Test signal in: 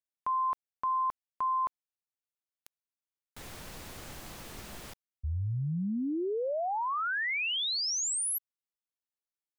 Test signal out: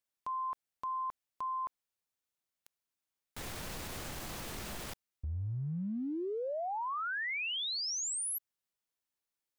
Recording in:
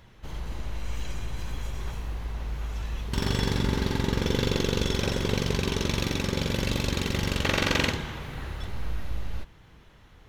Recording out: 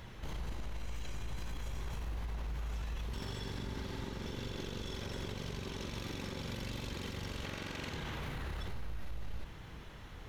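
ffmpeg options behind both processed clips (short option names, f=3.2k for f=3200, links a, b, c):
-af "acompressor=threshold=-38dB:ratio=12:attack=0.12:release=79:knee=1:detection=peak,volume=4dB"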